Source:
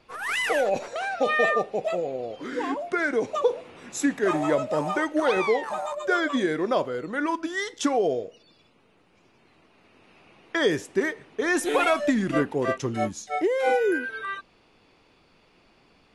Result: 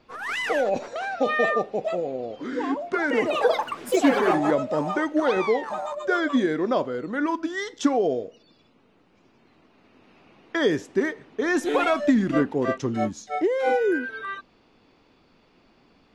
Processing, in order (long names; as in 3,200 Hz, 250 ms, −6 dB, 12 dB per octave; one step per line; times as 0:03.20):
graphic EQ with 15 bands 250 Hz +5 dB, 2,500 Hz −3 dB, 10,000 Hz −12 dB
0:02.70–0:04.80: delay with pitch and tempo change per echo 235 ms, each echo +5 semitones, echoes 3